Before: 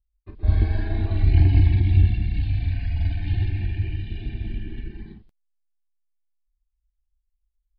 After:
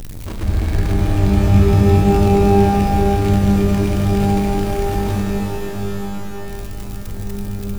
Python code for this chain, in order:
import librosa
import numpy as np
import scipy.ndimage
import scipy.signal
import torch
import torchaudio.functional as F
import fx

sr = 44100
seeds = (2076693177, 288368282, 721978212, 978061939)

y = x + 0.5 * 10.0 ** (-22.0 / 20.0) * np.sign(x)
y = fx.rev_shimmer(y, sr, seeds[0], rt60_s=3.8, semitones=12, shimmer_db=-2, drr_db=3.5)
y = y * 10.0 ** (-1.0 / 20.0)